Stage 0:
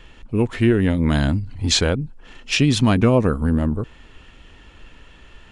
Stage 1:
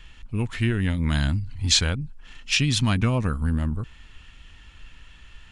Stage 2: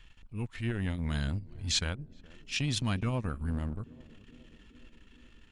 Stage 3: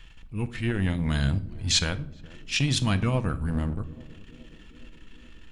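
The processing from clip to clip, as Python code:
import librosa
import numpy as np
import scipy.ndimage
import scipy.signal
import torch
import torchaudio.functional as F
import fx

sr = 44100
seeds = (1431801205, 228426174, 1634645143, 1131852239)

y1 = fx.peak_eq(x, sr, hz=440.0, db=-14.0, octaves=2.2)
y2 = fx.transient(y1, sr, attack_db=-8, sustain_db=-12)
y2 = fx.echo_banded(y2, sr, ms=419, feedback_pct=77, hz=320.0, wet_db=-18.5)
y2 = F.gain(torch.from_numpy(y2), -7.5).numpy()
y3 = fx.room_shoebox(y2, sr, seeds[0], volume_m3=870.0, walls='furnished', distance_m=0.66)
y3 = F.gain(torch.from_numpy(y3), 6.5).numpy()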